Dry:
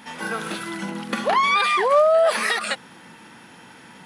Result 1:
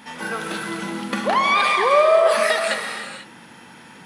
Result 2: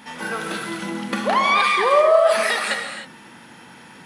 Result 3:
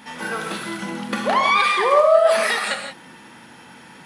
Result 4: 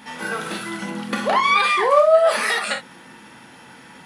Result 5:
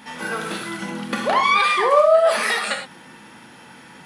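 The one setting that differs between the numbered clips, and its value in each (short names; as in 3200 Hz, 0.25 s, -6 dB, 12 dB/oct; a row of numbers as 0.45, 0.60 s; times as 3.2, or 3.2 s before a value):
non-linear reverb, gate: 520, 330, 200, 80, 130 ms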